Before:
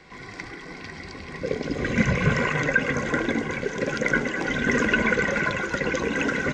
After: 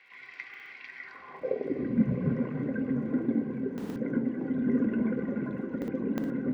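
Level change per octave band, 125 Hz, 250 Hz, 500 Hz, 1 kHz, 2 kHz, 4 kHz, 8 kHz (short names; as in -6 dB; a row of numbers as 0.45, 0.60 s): -6.5 dB, -0.5 dB, -8.0 dB, -17.0 dB, -21.0 dB, under -20 dB, under -25 dB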